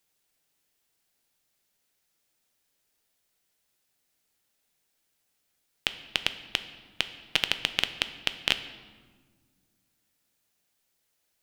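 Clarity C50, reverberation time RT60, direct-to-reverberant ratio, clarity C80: 12.5 dB, 1.6 s, 10.0 dB, 14.0 dB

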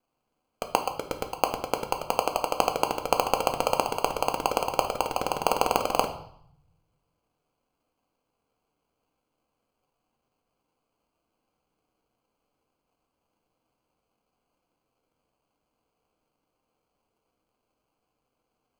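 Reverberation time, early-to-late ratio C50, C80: 0.65 s, 10.5 dB, 14.5 dB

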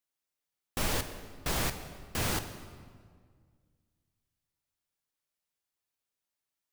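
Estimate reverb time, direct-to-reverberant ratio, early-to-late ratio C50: 1.8 s, 8.0 dB, 10.0 dB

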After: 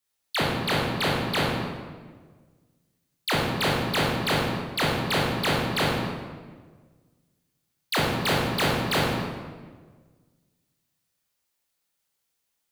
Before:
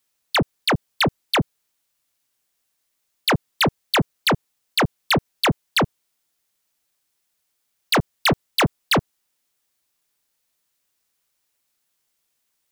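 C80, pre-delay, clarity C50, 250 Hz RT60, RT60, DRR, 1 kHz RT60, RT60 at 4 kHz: 2.0 dB, 17 ms, −1.0 dB, 1.8 s, 1.5 s, −5.0 dB, 1.4 s, 1.0 s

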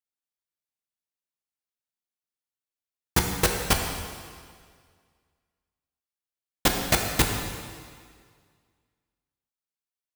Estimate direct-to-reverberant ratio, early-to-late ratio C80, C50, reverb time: 2.0 dB, 5.0 dB, 4.0 dB, 1.9 s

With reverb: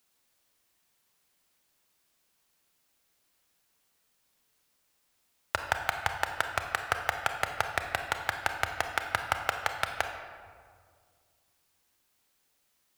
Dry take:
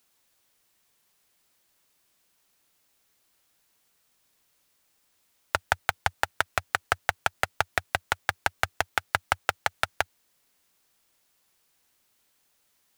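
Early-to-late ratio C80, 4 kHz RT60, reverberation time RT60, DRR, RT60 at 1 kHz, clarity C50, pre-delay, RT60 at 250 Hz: 7.5 dB, 1.0 s, 2.0 s, 5.0 dB, 1.8 s, 6.0 dB, 27 ms, 2.3 s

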